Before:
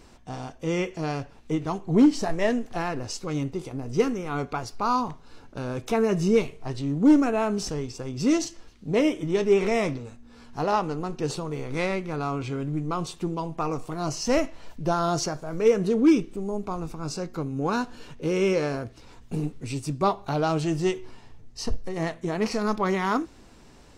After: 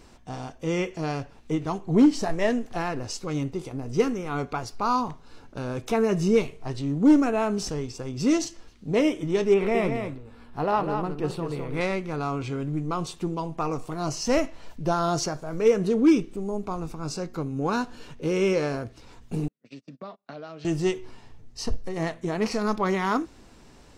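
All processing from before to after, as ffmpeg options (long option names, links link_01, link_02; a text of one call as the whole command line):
ffmpeg -i in.wav -filter_complex "[0:a]asettb=1/sr,asplit=3[link_01][link_02][link_03];[link_01]atrim=end=9.544[link_04];[link_02]atrim=start=9.54:end=11.81,asetpts=PTS-STARTPTS,afade=type=in:duration=0.004:curve=qsin,afade=type=out:start_time=2.266:duration=0.004:curve=qsin,equalizer=frequency=6300:width_type=o:width=1:gain=-14,aecho=1:1:204:0.473,atrim=end_sample=100107[link_05];[link_03]atrim=start=11.806[link_06];[link_04][link_05]acrossfade=duration=0.004:curve1=hsin:curve2=qsin[link_07];[link_07][link_06]acrossfade=duration=0.004:curve1=qsin:curve2=hsin,asettb=1/sr,asplit=3[link_08][link_09][link_10];[link_08]atrim=end=19.484[link_11];[link_09]atrim=start=19.48:end=20.65,asetpts=PTS-STARTPTS,afade=type=in:duration=0.004:curve=qsin,afade=type=out:start_time=1.166:duration=0.004:curve=qsin,agate=range=-35dB:threshold=-31dB:ratio=16:release=100:detection=peak,acompressor=threshold=-34dB:ratio=10:attack=3.2:release=140:knee=1:detection=peak,highpass=frequency=180:width=0.5412,highpass=frequency=180:width=1.3066,equalizer=frequency=220:width_type=q:width=4:gain=3,equalizer=frequency=360:width_type=q:width=4:gain=-8,equalizer=frequency=580:width_type=q:width=4:gain=4,equalizer=frequency=870:width_type=q:width=4:gain=-9,equalizer=frequency=1800:width_type=q:width=4:gain=5,lowpass=frequency=5200:width=0.5412,lowpass=frequency=5200:width=1.3066[link_12];[link_10]atrim=start=20.646[link_13];[link_11][link_12]acrossfade=duration=0.004:curve1=hsin:curve2=qsin[link_14];[link_14][link_13]acrossfade=duration=0.004:curve1=qsin:curve2=hsin" out.wav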